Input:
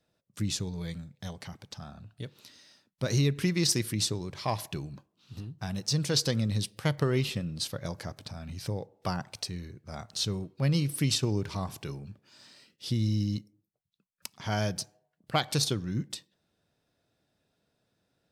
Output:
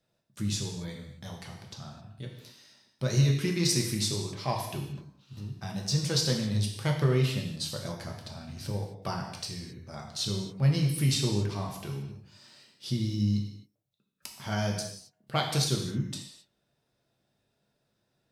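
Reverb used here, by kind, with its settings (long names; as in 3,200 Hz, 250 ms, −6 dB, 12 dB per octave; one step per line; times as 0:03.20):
reverb whose tail is shaped and stops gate 290 ms falling, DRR 0 dB
level −3 dB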